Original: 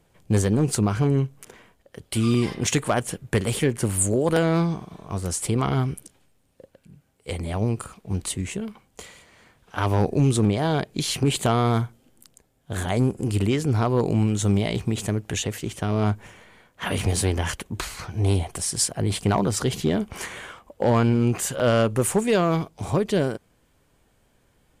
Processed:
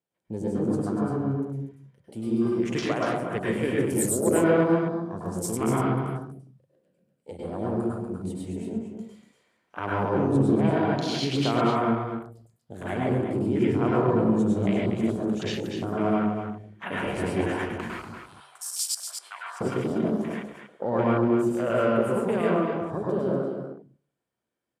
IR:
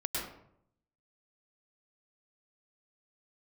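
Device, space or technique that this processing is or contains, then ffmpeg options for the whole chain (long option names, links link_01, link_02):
far laptop microphone: -filter_complex "[1:a]atrim=start_sample=2205[link_01];[0:a][link_01]afir=irnorm=-1:irlink=0,highpass=170,dynaudnorm=framelen=300:gausssize=21:maxgain=7.5dB,afwtdn=0.0447,asettb=1/sr,asplit=3[link_02][link_03][link_04];[link_02]atrim=end=18.164[link_05];[link_03]atrim=start=18.16:end=19.61,asetpts=PTS-STARTPTS,afade=type=in:duration=0.004:curve=qsin,afade=type=out:start_time=1.446:duration=0.004:curve=qsin,highpass=frequency=1300:width=0.5412,highpass=frequency=1300:width=1.3066[link_06];[link_04]atrim=start=19.606[link_07];[link_05][link_06]acrossfade=duration=0.004:curve1=hsin:curve2=qsin[link_08];[link_08][link_07]acrossfade=duration=0.004:curve1=qsin:curve2=hsin,aecho=1:1:240:0.422,bandreject=frequency=71.48:width_type=h:width=4,bandreject=frequency=142.96:width_type=h:width=4,volume=-8.5dB"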